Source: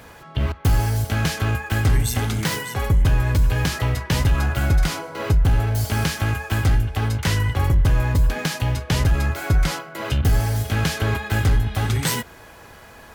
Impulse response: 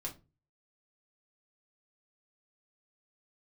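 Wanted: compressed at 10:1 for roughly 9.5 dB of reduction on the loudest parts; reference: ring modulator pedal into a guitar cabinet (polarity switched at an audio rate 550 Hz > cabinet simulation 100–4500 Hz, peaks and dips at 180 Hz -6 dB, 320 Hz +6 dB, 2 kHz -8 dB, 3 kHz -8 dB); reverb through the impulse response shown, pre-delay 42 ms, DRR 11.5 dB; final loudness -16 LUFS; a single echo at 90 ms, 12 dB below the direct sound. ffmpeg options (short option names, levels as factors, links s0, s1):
-filter_complex "[0:a]acompressor=threshold=0.0708:ratio=10,aecho=1:1:90:0.251,asplit=2[s0][s1];[1:a]atrim=start_sample=2205,adelay=42[s2];[s1][s2]afir=irnorm=-1:irlink=0,volume=0.299[s3];[s0][s3]amix=inputs=2:normalize=0,aeval=exprs='val(0)*sgn(sin(2*PI*550*n/s))':c=same,highpass=100,equalizer=f=180:t=q:w=4:g=-6,equalizer=f=320:t=q:w=4:g=6,equalizer=f=2000:t=q:w=4:g=-8,equalizer=f=3000:t=q:w=4:g=-8,lowpass=f=4500:w=0.5412,lowpass=f=4500:w=1.3066,volume=3.16"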